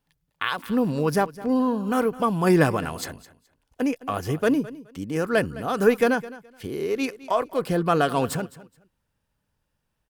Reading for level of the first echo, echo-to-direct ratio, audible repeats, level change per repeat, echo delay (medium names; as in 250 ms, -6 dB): -18.0 dB, -18.0 dB, 2, -14.0 dB, 211 ms